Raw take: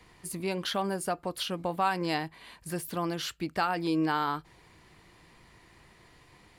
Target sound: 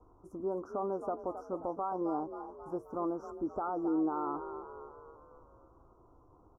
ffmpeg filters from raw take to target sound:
-filter_complex "[0:a]firequalizer=gain_entry='entry(110,0);entry(160,-11);entry(270,7);entry(9100,-29)':delay=0.05:min_phase=1,asplit=7[a][b][c][d][e][f][g];[b]adelay=266,afreqshift=37,volume=-12dB[h];[c]adelay=532,afreqshift=74,volume=-17.4dB[i];[d]adelay=798,afreqshift=111,volume=-22.7dB[j];[e]adelay=1064,afreqshift=148,volume=-28.1dB[k];[f]adelay=1330,afreqshift=185,volume=-33.4dB[l];[g]adelay=1596,afreqshift=222,volume=-38.8dB[m];[a][h][i][j][k][l][m]amix=inputs=7:normalize=0,alimiter=limit=-17dB:level=0:latency=1:release=21,asuperstop=centerf=2800:order=20:qfactor=0.67,lowshelf=f=110:g=9.5,volume=-8dB"

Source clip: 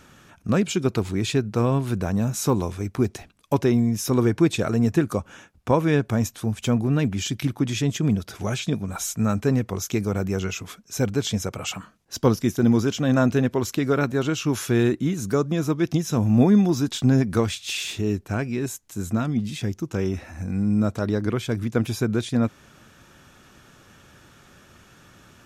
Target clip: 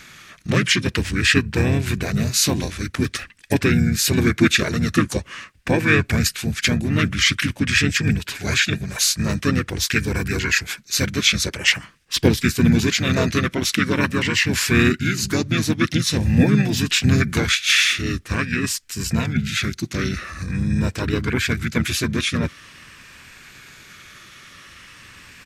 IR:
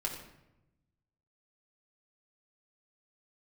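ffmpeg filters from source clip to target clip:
-filter_complex "[0:a]afftfilt=real='re*pow(10,7/40*sin(2*PI*(1.2*log(max(b,1)*sr/1024/100)/log(2)-(-0.46)*(pts-256)/sr)))':imag='im*pow(10,7/40*sin(2*PI*(1.2*log(max(b,1)*sr/1024/100)/log(2)-(-0.46)*(pts-256)/sr)))':win_size=1024:overlap=0.75,highshelf=f=1.6k:t=q:w=3:g=9,asplit=3[a][b][c];[b]asetrate=29433,aresample=44100,atempo=1.49831,volume=-3dB[d];[c]asetrate=33038,aresample=44100,atempo=1.33484,volume=-3dB[e];[a][d][e]amix=inputs=3:normalize=0,volume=-2dB"

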